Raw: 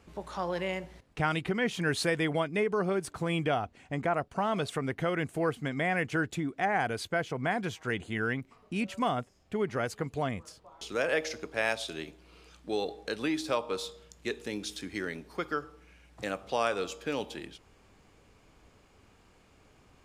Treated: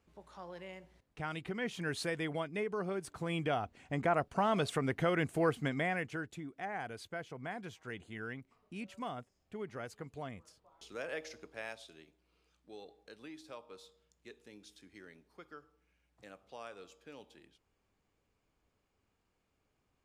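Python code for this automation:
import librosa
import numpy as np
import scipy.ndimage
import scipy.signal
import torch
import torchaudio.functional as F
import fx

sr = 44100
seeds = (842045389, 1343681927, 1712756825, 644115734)

y = fx.gain(x, sr, db=fx.line((0.79, -15.0), (1.64, -8.0), (2.97, -8.0), (4.18, -1.0), (5.67, -1.0), (6.26, -12.0), (11.44, -12.0), (12.05, -19.0)))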